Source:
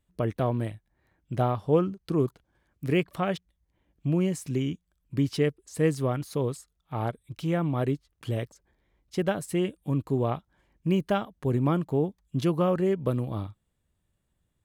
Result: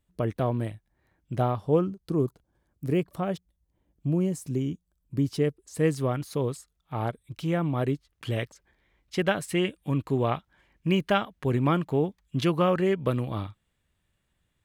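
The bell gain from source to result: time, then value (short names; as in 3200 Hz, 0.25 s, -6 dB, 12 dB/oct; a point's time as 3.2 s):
bell 2300 Hz 2.1 oct
1.49 s -0.5 dB
2.26 s -8.5 dB
5.15 s -8.5 dB
5.93 s +1.5 dB
7.94 s +1.5 dB
8.43 s +8.5 dB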